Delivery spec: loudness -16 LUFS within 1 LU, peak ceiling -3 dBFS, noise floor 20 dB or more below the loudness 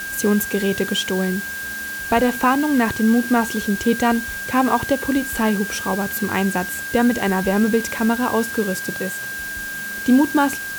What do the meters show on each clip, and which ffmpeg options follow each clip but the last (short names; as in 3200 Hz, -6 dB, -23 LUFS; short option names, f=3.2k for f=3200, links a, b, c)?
steady tone 1600 Hz; tone level -27 dBFS; noise floor -29 dBFS; noise floor target -40 dBFS; loudness -20.0 LUFS; peak -5.5 dBFS; loudness target -16.0 LUFS
-> -af "bandreject=f=1.6k:w=30"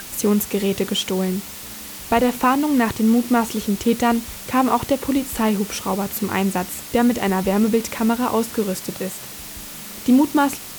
steady tone none; noise floor -35 dBFS; noise floor target -41 dBFS
-> -af "afftdn=nr=6:nf=-35"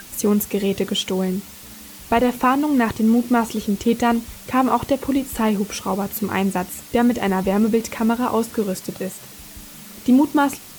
noise floor -40 dBFS; noise floor target -41 dBFS
-> -af "afftdn=nr=6:nf=-40"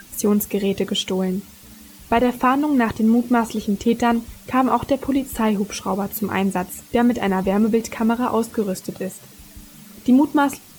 noise floor -45 dBFS; loudness -20.5 LUFS; peak -6.5 dBFS; loudness target -16.0 LUFS
-> -af "volume=4.5dB,alimiter=limit=-3dB:level=0:latency=1"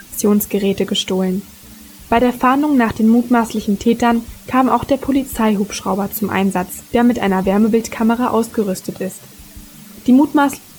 loudness -16.0 LUFS; peak -3.0 dBFS; noise floor -40 dBFS